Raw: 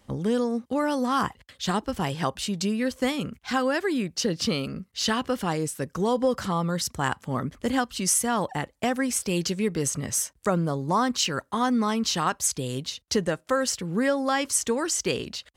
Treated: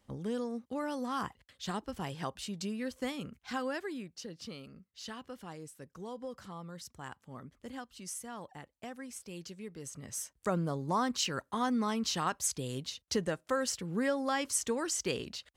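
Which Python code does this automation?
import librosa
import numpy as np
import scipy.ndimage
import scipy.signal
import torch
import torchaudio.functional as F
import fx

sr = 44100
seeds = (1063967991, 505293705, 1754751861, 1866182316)

y = fx.gain(x, sr, db=fx.line((3.72, -11.0), (4.26, -19.0), (9.8, -19.0), (10.52, -7.5)))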